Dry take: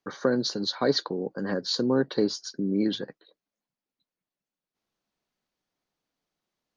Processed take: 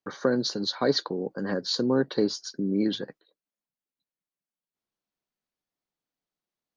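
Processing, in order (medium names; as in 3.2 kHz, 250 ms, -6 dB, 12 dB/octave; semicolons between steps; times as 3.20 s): gate -51 dBFS, range -8 dB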